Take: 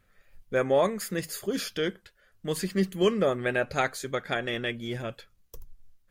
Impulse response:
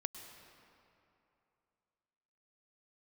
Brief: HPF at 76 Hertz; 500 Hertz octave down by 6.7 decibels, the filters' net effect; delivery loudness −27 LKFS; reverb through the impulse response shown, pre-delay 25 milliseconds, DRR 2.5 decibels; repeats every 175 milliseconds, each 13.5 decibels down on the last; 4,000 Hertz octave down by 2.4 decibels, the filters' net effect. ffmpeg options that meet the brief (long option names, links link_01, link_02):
-filter_complex "[0:a]highpass=76,equalizer=frequency=500:width_type=o:gain=-8.5,equalizer=frequency=4000:width_type=o:gain=-3,aecho=1:1:175|350:0.211|0.0444,asplit=2[link_01][link_02];[1:a]atrim=start_sample=2205,adelay=25[link_03];[link_02][link_03]afir=irnorm=-1:irlink=0,volume=-1dB[link_04];[link_01][link_04]amix=inputs=2:normalize=0,volume=3dB"